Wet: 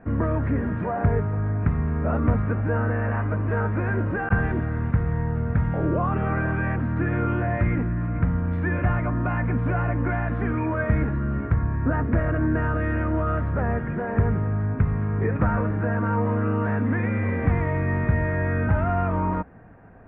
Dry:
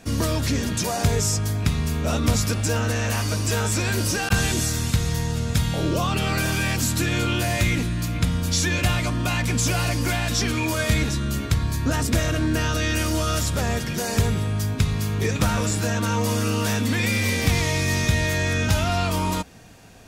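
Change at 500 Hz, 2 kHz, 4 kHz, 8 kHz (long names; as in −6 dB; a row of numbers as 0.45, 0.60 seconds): 0.0 dB, −4.0 dB, below −30 dB, below −40 dB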